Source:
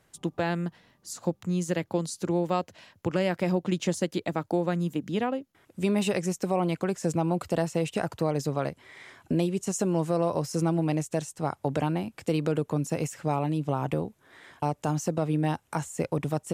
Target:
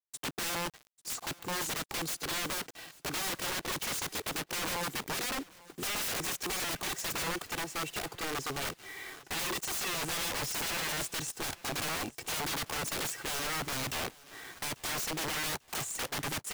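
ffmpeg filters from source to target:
ffmpeg -i in.wav -filter_complex "[0:a]highpass=120,aecho=1:1:2.6:0.98,asettb=1/sr,asplit=3[link_01][link_02][link_03];[link_01]atrim=end=7.264[link_04];[link_02]atrim=start=7.26:end=8.62,asetpts=PTS-STARTPTS,afade=type=in:duration=0.004:curve=qsin,afade=type=out:start_time=1.356:duration=0.004:curve=qsin,acompressor=threshold=-31dB:ratio=5[link_05];[link_03]atrim=start=8.616[link_06];[link_04][link_05]acrossfade=duration=0.004:curve1=hsin:curve2=qsin[link_07];[link_07][link_06]acrossfade=duration=0.004:curve1=qsin:curve2=hsin,aeval=exprs='(mod(29.9*val(0)+1,2)-1)/29.9':channel_layout=same,acrusher=bits=7:mix=0:aa=0.000001,aecho=1:1:843|1686|2529:0.0794|0.031|0.0121" out.wav

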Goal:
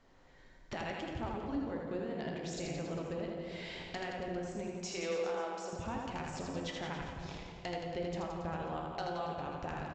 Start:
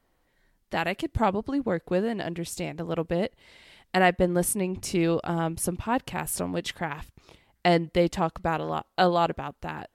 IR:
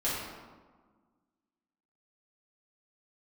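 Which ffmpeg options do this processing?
-filter_complex "[0:a]asettb=1/sr,asplit=3[link_01][link_02][link_03];[link_01]atrim=end=4.674[link_04];[link_02]atrim=start=4.67:end=5.73,asetpts=PTS-STARTPTS,afade=type=in:duration=0.004:curve=qsin,afade=type=out:start_time=1.056:duration=0.004:curve=qsin,highpass=frequency=440:width=0.5412,highpass=frequency=440:width=1.3066[link_05];[link_03]atrim=start=5.726[link_06];[link_04][link_05]acrossfade=duration=0.004:curve1=hsin:curve2=qsin[link_07];[link_07][link_06]acrossfade=duration=0.004:curve1=qsin:curve2=hsin,acompressor=threshold=-43dB:ratio=10,aeval=exprs='0.02*(abs(mod(val(0)/0.02+3,4)-2)-1)':channel_layout=same,aecho=1:1:80|172|277.8|399.5|539.4:0.631|0.398|0.251|0.158|0.1,asplit=2[link_08][link_09];[1:a]atrim=start_sample=2205,asetrate=25137,aresample=44100[link_10];[link_09][link_10]afir=irnorm=-1:irlink=0,volume=-12dB[link_11];[link_08][link_11]amix=inputs=2:normalize=0,aresample=16000,aresample=44100,volume=1.5dB"

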